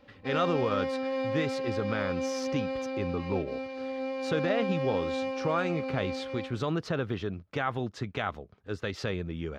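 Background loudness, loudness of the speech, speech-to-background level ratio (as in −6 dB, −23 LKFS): −33.5 LKFS, −33.0 LKFS, 0.5 dB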